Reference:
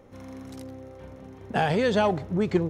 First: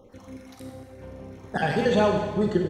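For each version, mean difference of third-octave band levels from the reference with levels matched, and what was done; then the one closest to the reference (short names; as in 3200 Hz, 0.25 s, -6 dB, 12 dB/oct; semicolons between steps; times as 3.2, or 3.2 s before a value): 3.5 dB: random spectral dropouts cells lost 32%; on a send: echo 1.195 s -6 dB; on the sum: Schroeder reverb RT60 1.3 s, combs from 31 ms, DRR 1.5 dB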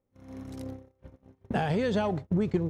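5.0 dB: compressor 3:1, threshold -36 dBFS, peak gain reduction 14 dB; low shelf 300 Hz +7 dB; gate -35 dBFS, range -35 dB; gain +4.5 dB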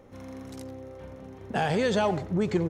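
2.0 dB: dynamic EQ 7200 Hz, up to +6 dB, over -56 dBFS, Q 1.4; in parallel at +2.5 dB: limiter -19 dBFS, peak gain reduction 8 dB; on the sum: speakerphone echo 90 ms, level -12 dB; gain -7.5 dB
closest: third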